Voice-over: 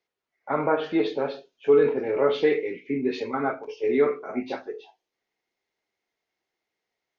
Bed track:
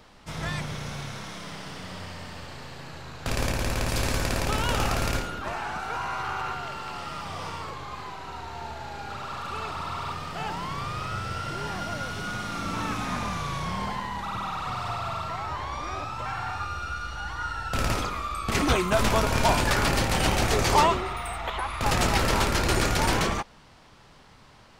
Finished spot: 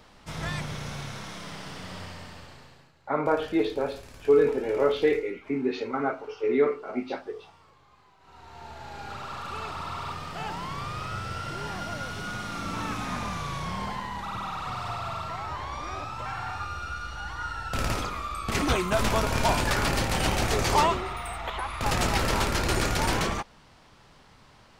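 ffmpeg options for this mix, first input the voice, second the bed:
ffmpeg -i stem1.wav -i stem2.wav -filter_complex "[0:a]adelay=2600,volume=-1.5dB[link_01];[1:a]volume=18.5dB,afade=type=out:start_time=2:duration=0.93:silence=0.0944061,afade=type=in:start_time=8.19:duration=0.87:silence=0.105925[link_02];[link_01][link_02]amix=inputs=2:normalize=0" out.wav

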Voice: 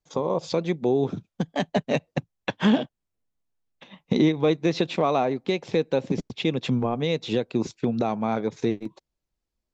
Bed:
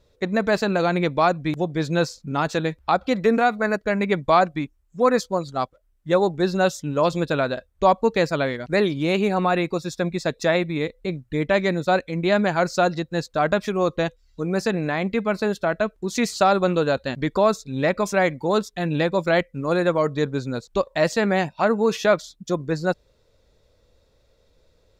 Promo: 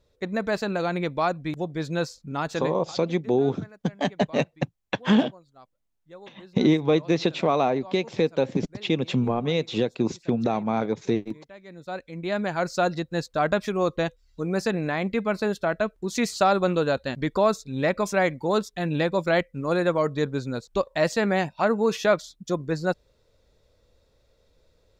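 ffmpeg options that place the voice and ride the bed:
ffmpeg -i stem1.wav -i stem2.wav -filter_complex "[0:a]adelay=2450,volume=0.5dB[link_01];[1:a]volume=18.5dB,afade=type=out:start_time=2.6:duration=0.32:silence=0.0891251,afade=type=in:start_time=11.64:duration=1.36:silence=0.0630957[link_02];[link_01][link_02]amix=inputs=2:normalize=0" out.wav

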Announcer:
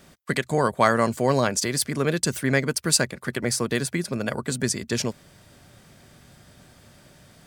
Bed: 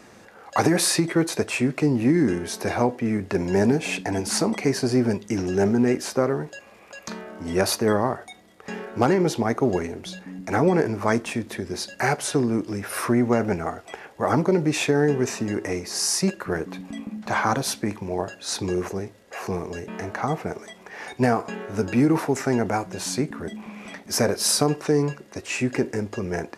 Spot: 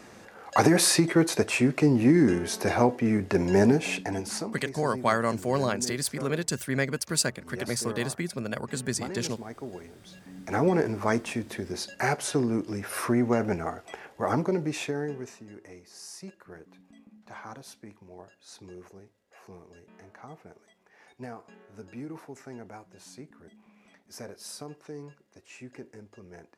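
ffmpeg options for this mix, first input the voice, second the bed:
ffmpeg -i stem1.wav -i stem2.wav -filter_complex "[0:a]adelay=4250,volume=-5.5dB[link_01];[1:a]volume=13dB,afade=type=out:start_time=3.64:duration=0.96:silence=0.141254,afade=type=in:start_time=10.02:duration=0.64:silence=0.211349,afade=type=out:start_time=14.12:duration=1.28:silence=0.149624[link_02];[link_01][link_02]amix=inputs=2:normalize=0" out.wav

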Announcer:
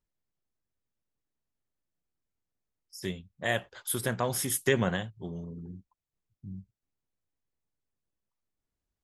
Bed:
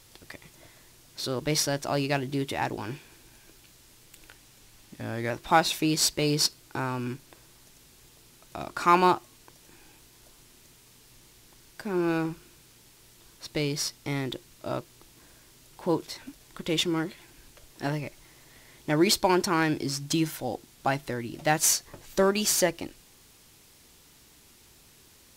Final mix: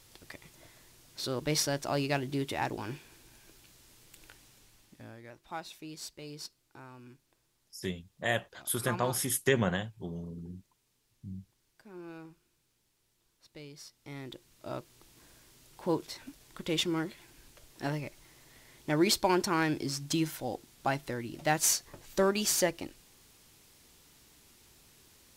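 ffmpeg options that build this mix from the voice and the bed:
ffmpeg -i stem1.wav -i stem2.wav -filter_complex "[0:a]adelay=4800,volume=-1dB[link_01];[1:a]volume=12dB,afade=type=out:start_time=4.43:duration=0.78:silence=0.158489,afade=type=in:start_time=13.86:duration=1.36:silence=0.16788[link_02];[link_01][link_02]amix=inputs=2:normalize=0" out.wav

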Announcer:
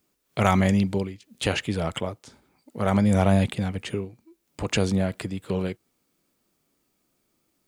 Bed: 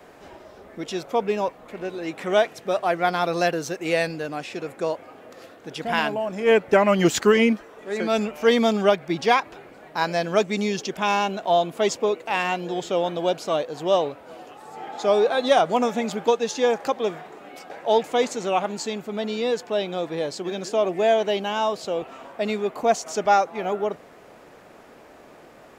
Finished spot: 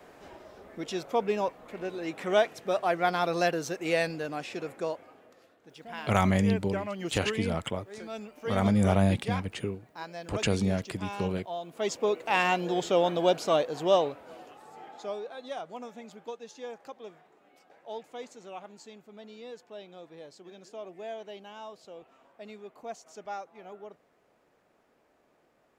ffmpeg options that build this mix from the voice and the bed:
ffmpeg -i stem1.wav -i stem2.wav -filter_complex "[0:a]adelay=5700,volume=-4dB[link_01];[1:a]volume=11.5dB,afade=type=out:start_time=4.62:duration=0.81:silence=0.237137,afade=type=in:start_time=11.61:duration=0.78:silence=0.158489,afade=type=out:start_time=13.59:duration=1.63:silence=0.112202[link_02];[link_01][link_02]amix=inputs=2:normalize=0" out.wav

